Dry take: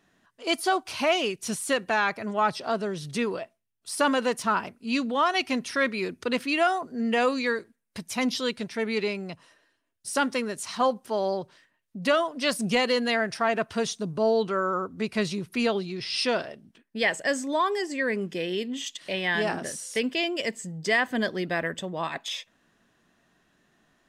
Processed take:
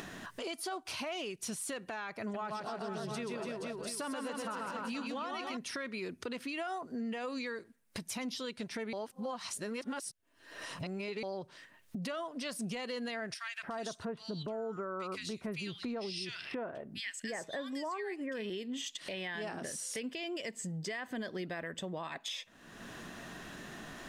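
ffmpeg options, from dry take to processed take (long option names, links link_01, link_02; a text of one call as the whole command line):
ffmpeg -i in.wav -filter_complex "[0:a]asettb=1/sr,asplit=3[link_01][link_02][link_03];[link_01]atrim=end=2.214[link_04];[link_02]atrim=start=2.21:end=5.57,asetpts=PTS-STARTPTS,afade=type=in:duration=0.004:curve=qsin,afade=type=out:start_time=3.356:duration=0.004:curve=qsin,aecho=1:1:130|286|473.2|697.8|967.4:0.631|0.398|0.251|0.158|0.1,atrim=end_sample=148176[link_05];[link_03]atrim=start=5.566[link_06];[link_04][link_05]acrossfade=duration=0.004:curve1=hsin:curve2=qsin[link_07];[link_07][link_06]acrossfade=duration=0.004:curve1=qsin:curve2=hsin,asettb=1/sr,asplit=3[link_08][link_09][link_10];[link_08]atrim=end=13.344[link_11];[link_09]atrim=start=13.34:end=18.5,asetpts=PTS-STARTPTS,afade=type=in:duration=0.004:curve=qsin,afade=type=out:start_time=5.156:duration=0.004:curve=qsin,acrossover=split=1800[link_12][link_13];[link_12]adelay=290[link_14];[link_14][link_13]amix=inputs=2:normalize=0,atrim=end_sample=227556[link_15];[link_10]atrim=start=18.496[link_16];[link_11][link_15]acrossfade=duration=0.004:curve1=hsin:curve2=qsin[link_17];[link_17][link_16]acrossfade=duration=0.004:curve1=qsin:curve2=hsin,asplit=3[link_18][link_19][link_20];[link_18]atrim=end=8.932[link_21];[link_19]atrim=start=8.928:end=11.232,asetpts=PTS-STARTPTS,areverse[link_22];[link_20]atrim=start=11.228[link_23];[link_21][link_22]acrossfade=duration=0.004:curve1=hsin:curve2=hsin[link_24];[link_24][link_23]acrossfade=duration=0.004:curve1=hsin:curve2=hsin,acompressor=mode=upward:threshold=-28dB:ratio=2.5,alimiter=limit=-23.5dB:level=0:latency=1:release=122,acompressor=threshold=-40dB:ratio=2,volume=-1dB" out.wav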